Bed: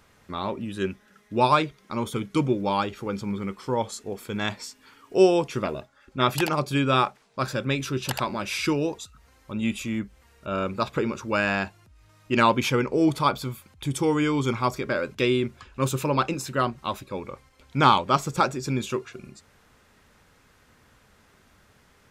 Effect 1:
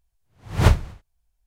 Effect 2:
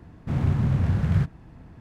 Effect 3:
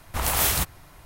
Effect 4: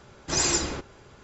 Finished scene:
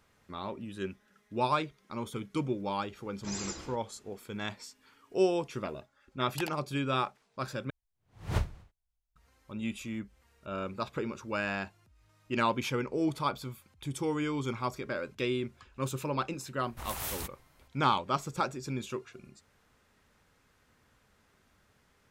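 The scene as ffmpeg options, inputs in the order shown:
ffmpeg -i bed.wav -i cue0.wav -i cue1.wav -i cue2.wav -i cue3.wav -filter_complex "[0:a]volume=-9dB,asplit=2[link_01][link_02];[link_01]atrim=end=7.704[link_03];[1:a]atrim=end=1.46,asetpts=PTS-STARTPTS,volume=-14.5dB[link_04];[link_02]atrim=start=9.156[link_05];[4:a]atrim=end=1.23,asetpts=PTS-STARTPTS,volume=-15.5dB,afade=type=in:duration=0.004:curve=hsin,afade=type=out:start_time=1.226:duration=0.004:curve=hsin,adelay=2950[link_06];[3:a]atrim=end=1.05,asetpts=PTS-STARTPTS,volume=-15dB,afade=type=in:duration=0.004:curve=hsin,afade=type=out:start_time=1.046:duration=0.004:curve=hsin,adelay=16630[link_07];[link_03][link_04]acrossfade=duration=0.004:curve1=hsin:curve2=hsin[link_08];[link_08][link_05]acrossfade=duration=0.004:curve1=hsin:curve2=hsin[link_09];[link_09][link_06][link_07]amix=inputs=3:normalize=0" out.wav

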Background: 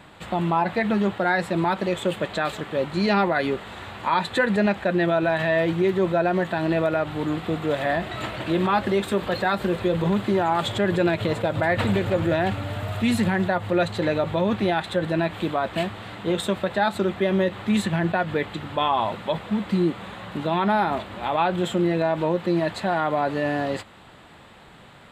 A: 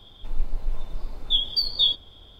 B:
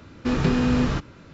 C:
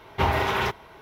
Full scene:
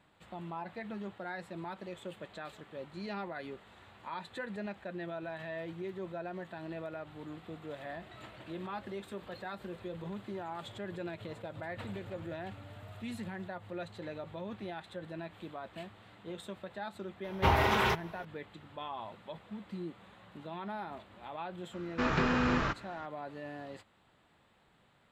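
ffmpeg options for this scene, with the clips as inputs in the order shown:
ffmpeg -i bed.wav -i cue0.wav -i cue1.wav -i cue2.wav -filter_complex "[0:a]volume=-19.5dB[link_01];[2:a]equalizer=frequency=1400:width=0.49:gain=13[link_02];[3:a]atrim=end=1.01,asetpts=PTS-STARTPTS,volume=-3.5dB,afade=type=in:duration=0.004:curve=hsin,afade=type=out:start_time=1.006:duration=0.004:curve=hsin,adelay=17240[link_03];[link_02]atrim=end=1.33,asetpts=PTS-STARTPTS,volume=-12dB,afade=type=in:duration=0.004:curve=hsin,afade=type=out:start_time=1.326:duration=0.004:curve=hsin,adelay=21730[link_04];[link_01][link_03][link_04]amix=inputs=3:normalize=0" out.wav

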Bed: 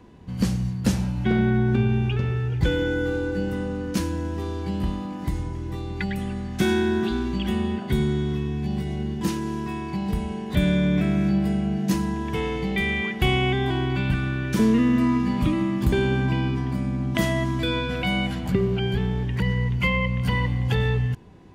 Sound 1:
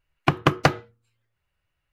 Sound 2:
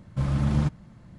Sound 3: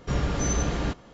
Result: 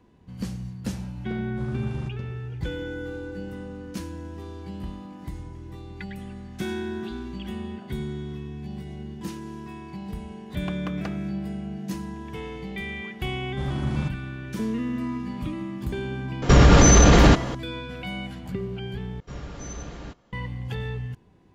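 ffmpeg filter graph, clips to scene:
ffmpeg -i bed.wav -i cue0.wav -i cue1.wav -i cue2.wav -filter_complex "[2:a]asplit=2[link_01][link_02];[3:a]asplit=2[link_03][link_04];[0:a]volume=-9dB[link_05];[1:a]alimiter=limit=-8.5dB:level=0:latency=1:release=159[link_06];[link_03]alimiter=level_in=23dB:limit=-1dB:release=50:level=0:latency=1[link_07];[link_05]asplit=2[link_08][link_09];[link_08]atrim=end=19.204[link_10];[link_04]atrim=end=1.13,asetpts=PTS-STARTPTS,volume=-11dB[link_11];[link_09]atrim=start=20.326[link_12];[link_01]atrim=end=1.18,asetpts=PTS-STARTPTS,volume=-11dB,afade=type=in:duration=0.004:curve=hsin,afade=type=out:start_time=1.176:duration=0.004:curve=hsin,adelay=1400[link_13];[link_06]atrim=end=1.92,asetpts=PTS-STARTPTS,volume=-14.5dB,afade=type=in:duration=0.004:curve=hsin,afade=type=out:start_time=1.916:duration=0.004:curve=hsin,adelay=10400[link_14];[link_02]atrim=end=1.18,asetpts=PTS-STARTPTS,volume=-4dB,afade=type=in:duration=0.004:curve=hsin,afade=type=out:start_time=1.176:duration=0.004:curve=hsin,adelay=13400[link_15];[link_07]atrim=end=1.13,asetpts=PTS-STARTPTS,volume=-4dB,afade=type=in:duration=0.004:curve=hsin,afade=type=out:start_time=1.126:duration=0.004:curve=hsin,adelay=16420[link_16];[link_10][link_11]acrossfade=duration=0.004:curve1=hsin:curve2=hsin[link_17];[link_17][link_12]acrossfade=duration=0.004:curve1=hsin:curve2=hsin[link_18];[link_18][link_13][link_14][link_15][link_16]amix=inputs=5:normalize=0" out.wav

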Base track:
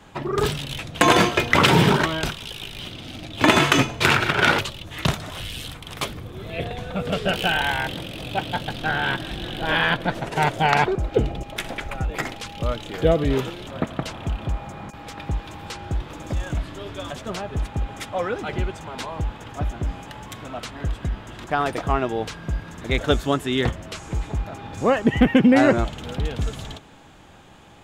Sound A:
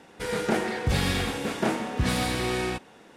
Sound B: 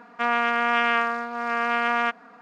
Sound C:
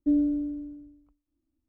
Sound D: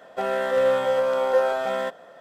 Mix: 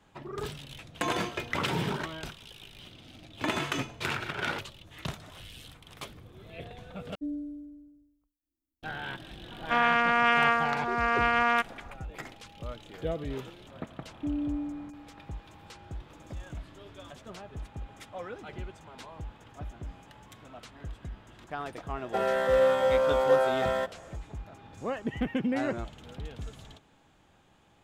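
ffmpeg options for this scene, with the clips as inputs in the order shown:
ffmpeg -i bed.wav -i cue0.wav -i cue1.wav -i cue2.wav -i cue3.wav -filter_complex "[3:a]asplit=2[link_01][link_02];[0:a]volume=-14.5dB[link_03];[link_01]aemphasis=mode=production:type=50kf[link_04];[link_02]alimiter=level_in=0.5dB:limit=-24dB:level=0:latency=1:release=71,volume=-0.5dB[link_05];[link_03]asplit=2[link_06][link_07];[link_06]atrim=end=7.154[link_08];[link_04]atrim=end=1.68,asetpts=PTS-STARTPTS,volume=-12dB[link_09];[link_07]atrim=start=8.826[link_10];[2:a]atrim=end=2.41,asetpts=PTS-STARTPTS,volume=-1.5dB,afade=type=in:duration=0.004:curve=hsin,afade=type=out:start_time=2.406:duration=0.004:curve=hsin,adelay=9510[link_11];[link_05]atrim=end=1.68,asetpts=PTS-STARTPTS,volume=-2.5dB,afade=type=in:duration=0.004:curve=hsin,afade=type=out:start_time=1.676:duration=0.004:curve=hsin,adelay=14170[link_12];[4:a]atrim=end=2.2,asetpts=PTS-STARTPTS,volume=-2.5dB,afade=type=in:duration=0.004:curve=hsin,afade=type=out:start_time=2.196:duration=0.004:curve=hsin,adelay=968436S[link_13];[link_08][link_09]acrossfade=duration=0.004:curve1=hsin:curve2=hsin[link_14];[link_14][link_10]acrossfade=duration=0.004:curve1=hsin:curve2=hsin[link_15];[link_15][link_11][link_12][link_13]amix=inputs=4:normalize=0" out.wav

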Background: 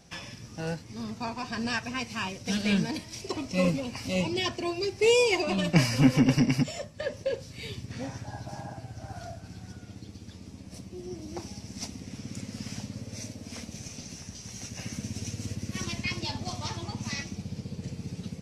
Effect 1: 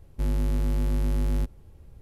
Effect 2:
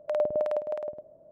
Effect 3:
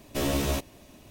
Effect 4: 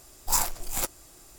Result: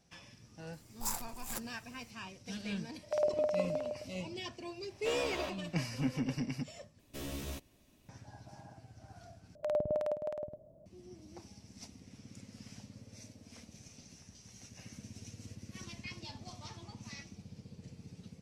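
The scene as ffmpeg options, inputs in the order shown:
ffmpeg -i bed.wav -i cue0.wav -i cue1.wav -i cue2.wav -i cue3.wav -filter_complex "[2:a]asplit=2[link_01][link_02];[3:a]asplit=2[link_03][link_04];[0:a]volume=-13.5dB[link_05];[link_03]acrossover=split=400 4500:gain=0.178 1 0.126[link_06][link_07][link_08];[link_06][link_07][link_08]amix=inputs=3:normalize=0[link_09];[link_04]equalizer=frequency=740:width_type=o:width=2:gain=-5.5[link_10];[link_02]bass=frequency=250:gain=14,treble=frequency=4000:gain=8[link_11];[link_05]asplit=3[link_12][link_13][link_14];[link_12]atrim=end=6.994[link_15];[link_10]atrim=end=1.1,asetpts=PTS-STARTPTS,volume=-13dB[link_16];[link_13]atrim=start=8.086:end=9.554[link_17];[link_11]atrim=end=1.31,asetpts=PTS-STARTPTS,volume=-6.5dB[link_18];[link_14]atrim=start=10.856[link_19];[4:a]atrim=end=1.38,asetpts=PTS-STARTPTS,volume=-12.5dB,afade=type=in:duration=0.004:curve=hsin,afade=type=out:start_time=1.376:duration=0.004:curve=hsin,adelay=730[link_20];[link_01]atrim=end=1.31,asetpts=PTS-STARTPTS,volume=-4.5dB,afade=type=in:duration=0.004:curve=hsin,afade=type=out:start_time=1.306:duration=0.004:curve=hsin,adelay=3030[link_21];[link_09]atrim=end=1.1,asetpts=PTS-STARTPTS,volume=-6dB,afade=type=in:duration=0.004:curve=hsin,afade=type=out:start_time=1.096:duration=0.004:curve=hsin,adelay=4900[link_22];[link_15][link_16]acrossfade=duration=0.004:curve1=hsin:curve2=hsin[link_23];[link_23][link_17]acrossfade=duration=0.004:curve1=hsin:curve2=hsin[link_24];[link_24][link_18]acrossfade=duration=0.004:curve1=hsin:curve2=hsin[link_25];[link_25][link_19]acrossfade=duration=0.004:curve1=hsin:curve2=hsin[link_26];[link_26][link_20][link_21][link_22]amix=inputs=4:normalize=0" out.wav

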